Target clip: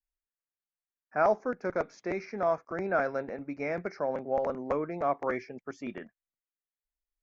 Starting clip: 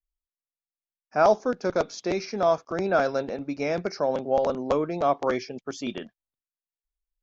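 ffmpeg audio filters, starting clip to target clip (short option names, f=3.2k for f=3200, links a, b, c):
-af "asetnsamples=n=441:p=0,asendcmd='1.17 highshelf g -8',highshelf=f=2.6k:t=q:w=3:g=-14,volume=-6.5dB"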